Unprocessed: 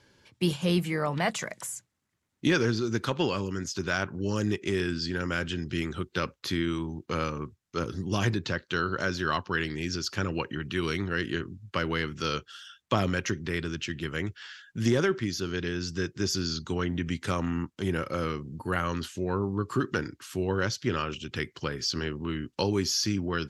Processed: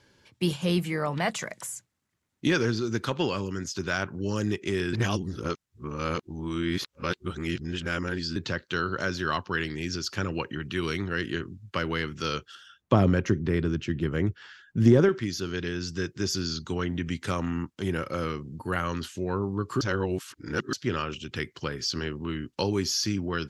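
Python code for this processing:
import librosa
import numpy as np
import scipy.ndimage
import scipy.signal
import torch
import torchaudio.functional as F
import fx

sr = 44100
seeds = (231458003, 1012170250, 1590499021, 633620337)

y = fx.tilt_shelf(x, sr, db=7.5, hz=1200.0, at=(12.55, 15.09))
y = fx.edit(y, sr, fx.reverse_span(start_s=4.93, length_s=3.43),
    fx.reverse_span(start_s=19.81, length_s=0.92), tone=tone)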